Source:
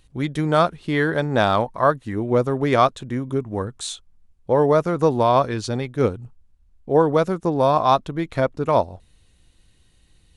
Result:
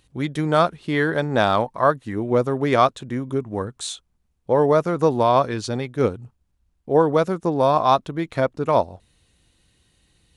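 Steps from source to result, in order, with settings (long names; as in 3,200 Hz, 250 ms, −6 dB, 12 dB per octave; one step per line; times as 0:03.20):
high-pass filter 92 Hz 6 dB per octave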